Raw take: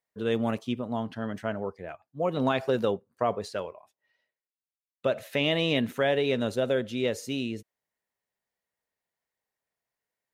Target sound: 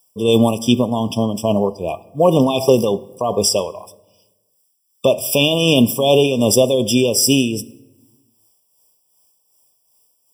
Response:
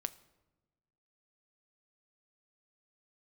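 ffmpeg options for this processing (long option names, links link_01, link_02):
-filter_complex "[0:a]alimiter=limit=-20dB:level=0:latency=1:release=27,aexciter=amount=7.3:drive=3.6:freq=3900,tremolo=f=2.6:d=0.53,asplit=2[link_01][link_02];[1:a]atrim=start_sample=2205[link_03];[link_02][link_03]afir=irnorm=-1:irlink=0,volume=11dB[link_04];[link_01][link_04]amix=inputs=2:normalize=0,afftfilt=real='re*eq(mod(floor(b*sr/1024/1200),2),0)':imag='im*eq(mod(floor(b*sr/1024/1200),2),0)':win_size=1024:overlap=0.75,volume=5.5dB"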